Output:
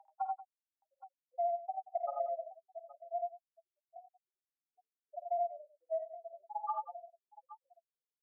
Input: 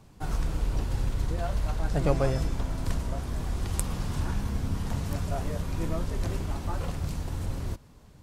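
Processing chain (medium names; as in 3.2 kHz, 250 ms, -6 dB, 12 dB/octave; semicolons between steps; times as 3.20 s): octave divider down 2 oct, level 0 dB; spectral gate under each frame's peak -15 dB strong; Chebyshev high-pass 660 Hz, order 8; tilt EQ -3.5 dB/octave; compression, threshold -47 dBFS, peak gain reduction 14.5 dB; multi-tap echo 51/81/94/184/820 ms -12/-4.5/-8/-16/-16.5 dB; trim +13.5 dB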